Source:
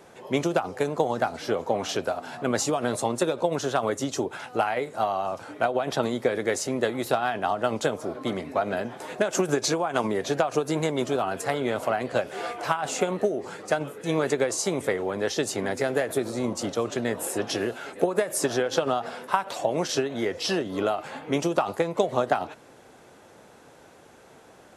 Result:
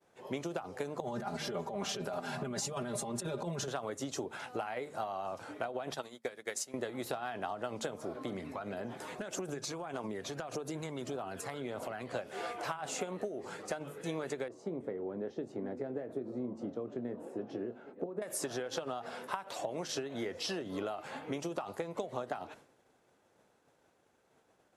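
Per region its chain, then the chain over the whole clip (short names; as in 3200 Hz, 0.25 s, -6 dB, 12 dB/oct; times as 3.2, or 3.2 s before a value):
1–3.68 bell 130 Hz +10.5 dB 0.96 oct + comb 5 ms, depth 85% + negative-ratio compressor -27 dBFS
5.94–6.74 tilt +2.5 dB/oct + upward expander 2.5:1, over -40 dBFS
8.25–12.12 compressor 2.5:1, threshold -33 dBFS + phaser 1.7 Hz, delay 1 ms, feedback 35%
14.48–18.22 band-pass 250 Hz, Q 0.93 + doubler 24 ms -13 dB
whole clip: de-hum 75.36 Hz, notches 3; expander -42 dBFS; compressor 5:1, threshold -29 dBFS; gain -5.5 dB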